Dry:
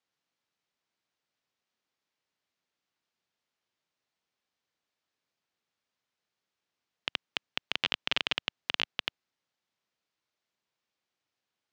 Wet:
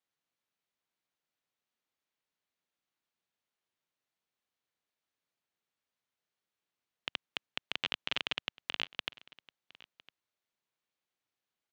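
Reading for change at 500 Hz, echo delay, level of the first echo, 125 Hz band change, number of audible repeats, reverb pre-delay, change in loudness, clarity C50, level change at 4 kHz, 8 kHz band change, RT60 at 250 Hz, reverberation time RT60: −4.5 dB, 1,007 ms, −22.0 dB, −4.5 dB, 1, no reverb audible, −4.5 dB, no reverb audible, −4.5 dB, −5.5 dB, no reverb audible, no reverb audible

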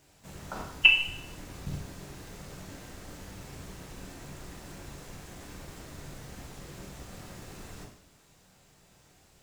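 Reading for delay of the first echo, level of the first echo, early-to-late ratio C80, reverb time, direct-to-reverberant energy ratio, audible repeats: no echo audible, no echo audible, 8.5 dB, 0.70 s, 0.0 dB, no echo audible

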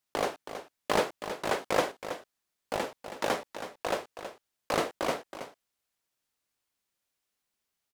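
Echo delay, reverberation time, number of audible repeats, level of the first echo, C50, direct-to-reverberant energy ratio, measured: 323 ms, no reverb audible, 1, −10.5 dB, no reverb audible, no reverb audible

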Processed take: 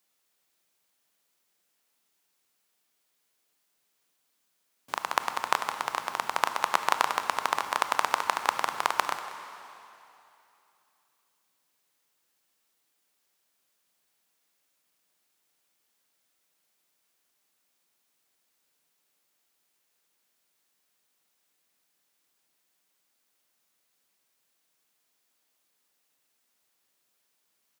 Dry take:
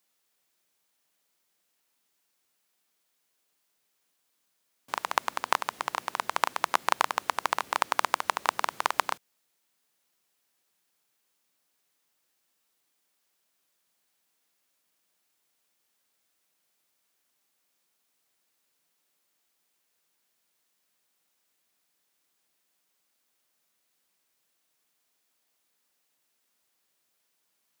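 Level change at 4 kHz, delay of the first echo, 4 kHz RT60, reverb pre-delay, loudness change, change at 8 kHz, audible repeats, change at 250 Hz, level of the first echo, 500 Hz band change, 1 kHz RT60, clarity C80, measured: +0.5 dB, 190 ms, 2.7 s, 23 ms, +0.5 dB, +0.5 dB, 1, +0.5 dB, −16.5 dB, +0.5 dB, 2.9 s, 9.0 dB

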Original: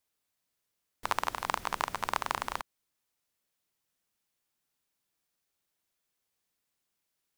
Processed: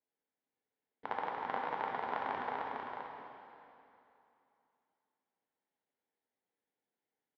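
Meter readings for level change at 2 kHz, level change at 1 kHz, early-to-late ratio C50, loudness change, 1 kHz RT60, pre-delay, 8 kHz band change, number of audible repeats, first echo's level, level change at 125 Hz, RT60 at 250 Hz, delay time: −5.5 dB, −3.0 dB, −2.0 dB, −5.0 dB, 2.8 s, 5 ms, below −30 dB, 1, −4.5 dB, −7.5 dB, 2.9 s, 451 ms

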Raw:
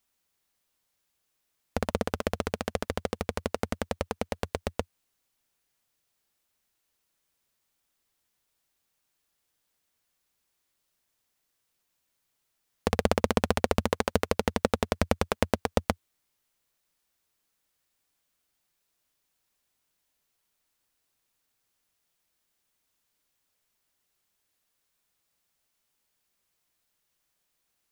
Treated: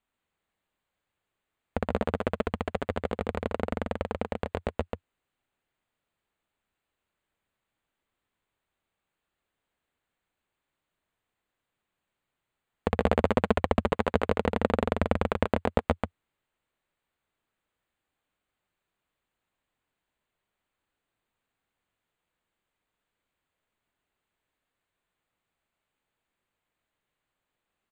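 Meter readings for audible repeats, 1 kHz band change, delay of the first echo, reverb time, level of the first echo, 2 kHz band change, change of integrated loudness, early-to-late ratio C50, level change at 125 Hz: 1, +1.0 dB, 138 ms, no reverb audible, −4.0 dB, −0.5 dB, +0.5 dB, no reverb audible, +1.5 dB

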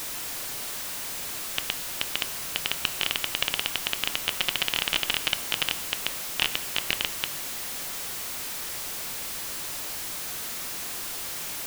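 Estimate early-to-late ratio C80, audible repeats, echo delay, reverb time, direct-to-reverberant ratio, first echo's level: 17.0 dB, no echo audible, no echo audible, 1.0 s, 11.5 dB, no echo audible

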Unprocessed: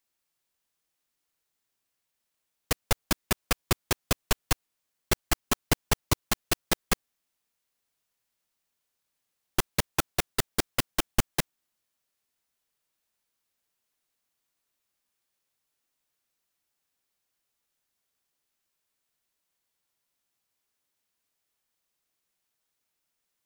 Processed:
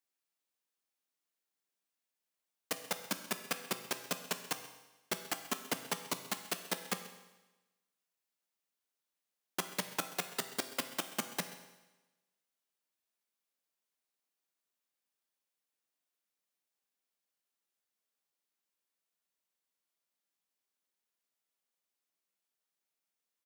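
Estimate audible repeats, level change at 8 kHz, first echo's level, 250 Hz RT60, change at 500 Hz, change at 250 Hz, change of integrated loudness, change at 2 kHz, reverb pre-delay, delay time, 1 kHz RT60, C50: 1, −8.5 dB, −18.5 dB, 1.1 s, −9.0 dB, −10.5 dB, −9.0 dB, −8.0 dB, 8 ms, 132 ms, 1.1 s, 10.0 dB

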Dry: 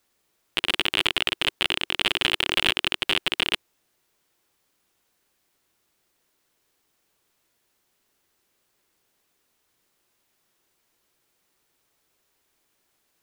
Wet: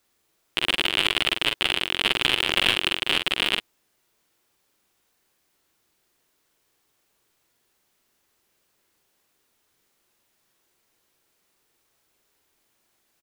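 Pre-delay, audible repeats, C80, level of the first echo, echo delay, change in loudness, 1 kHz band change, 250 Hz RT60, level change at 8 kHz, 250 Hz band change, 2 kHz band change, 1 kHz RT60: no reverb audible, 1, no reverb audible, −5.0 dB, 44 ms, +1.0 dB, +1.5 dB, no reverb audible, +1.0 dB, +1.5 dB, +1.5 dB, no reverb audible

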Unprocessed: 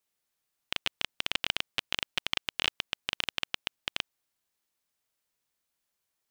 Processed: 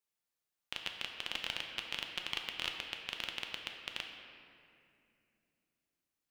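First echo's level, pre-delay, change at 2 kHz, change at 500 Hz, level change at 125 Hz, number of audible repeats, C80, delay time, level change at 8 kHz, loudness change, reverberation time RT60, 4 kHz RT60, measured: no echo audible, 6 ms, −6.5 dB, −6.5 dB, −7.5 dB, no echo audible, 5.0 dB, no echo audible, −7.5 dB, −7.0 dB, 2.6 s, 1.6 s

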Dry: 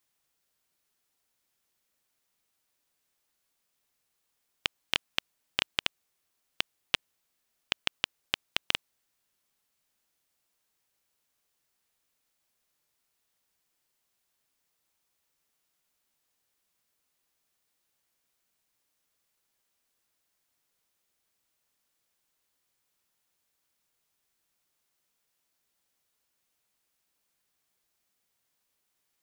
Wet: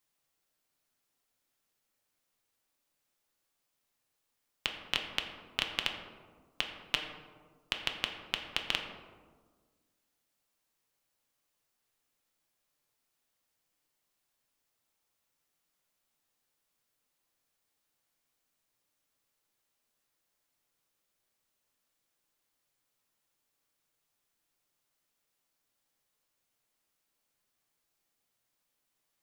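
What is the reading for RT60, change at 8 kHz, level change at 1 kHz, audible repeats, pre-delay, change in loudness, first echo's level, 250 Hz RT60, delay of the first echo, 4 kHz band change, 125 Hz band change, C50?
1.5 s, −3.0 dB, −1.0 dB, no echo audible, 4 ms, −2.5 dB, no echo audible, 1.9 s, no echo audible, −2.5 dB, −1.0 dB, 6.0 dB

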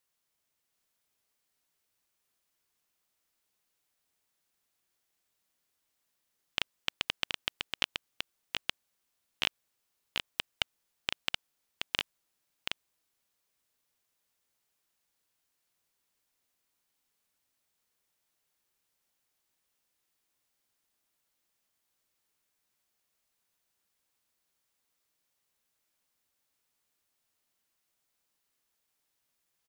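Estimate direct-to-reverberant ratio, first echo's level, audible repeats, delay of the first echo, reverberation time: no reverb audible, −4.0 dB, 1, 726 ms, no reverb audible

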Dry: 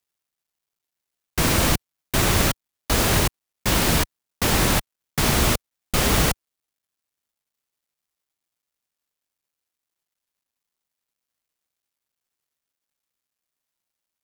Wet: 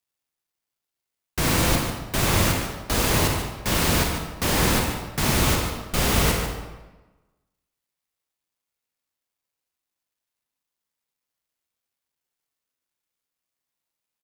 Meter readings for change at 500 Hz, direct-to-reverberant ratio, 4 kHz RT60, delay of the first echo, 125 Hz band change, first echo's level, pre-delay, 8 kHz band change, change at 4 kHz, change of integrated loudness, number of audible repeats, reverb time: −0.5 dB, 0.0 dB, 0.85 s, 146 ms, 0.0 dB, −9.5 dB, 30 ms, −1.5 dB, −1.5 dB, −1.0 dB, 1, 1.1 s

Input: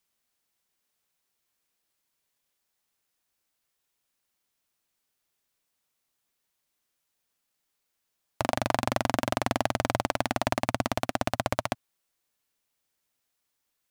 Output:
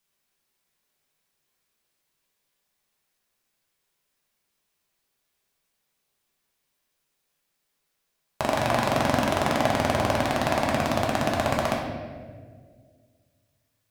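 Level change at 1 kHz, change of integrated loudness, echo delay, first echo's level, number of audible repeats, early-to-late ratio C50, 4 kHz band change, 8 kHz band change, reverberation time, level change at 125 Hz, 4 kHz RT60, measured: +4.5 dB, +4.5 dB, no echo audible, no echo audible, no echo audible, 2.0 dB, +4.0 dB, +2.5 dB, 1.8 s, +5.0 dB, 1.1 s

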